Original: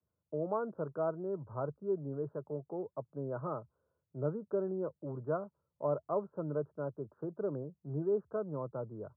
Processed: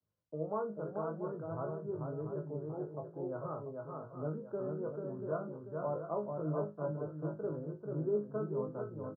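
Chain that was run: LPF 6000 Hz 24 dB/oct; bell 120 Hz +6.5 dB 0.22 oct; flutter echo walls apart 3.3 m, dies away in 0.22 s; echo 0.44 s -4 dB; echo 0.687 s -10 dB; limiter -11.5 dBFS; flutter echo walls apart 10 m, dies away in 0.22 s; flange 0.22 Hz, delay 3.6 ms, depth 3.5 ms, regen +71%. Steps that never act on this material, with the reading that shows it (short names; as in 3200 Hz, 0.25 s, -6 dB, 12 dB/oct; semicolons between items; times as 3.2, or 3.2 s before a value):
LPF 6000 Hz: input band ends at 1500 Hz; limiter -11.5 dBFS: input peak -19.0 dBFS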